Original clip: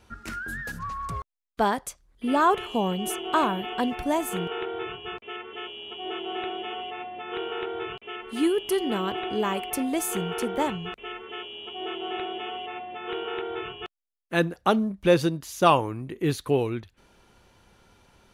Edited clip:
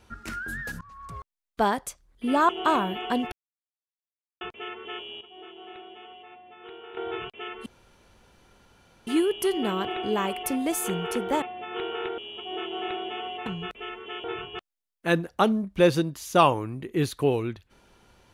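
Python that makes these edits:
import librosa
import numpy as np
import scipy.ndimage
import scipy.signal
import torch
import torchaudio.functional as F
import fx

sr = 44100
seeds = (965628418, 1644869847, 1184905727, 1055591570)

y = fx.edit(x, sr, fx.fade_in_from(start_s=0.81, length_s=0.81, floor_db=-22.0),
    fx.cut(start_s=2.49, length_s=0.68),
    fx.silence(start_s=4.0, length_s=1.09),
    fx.clip_gain(start_s=5.89, length_s=1.76, db=-12.0),
    fx.insert_room_tone(at_s=8.34, length_s=1.41),
    fx.swap(start_s=10.69, length_s=0.78, other_s=12.75, other_length_s=0.76), tone=tone)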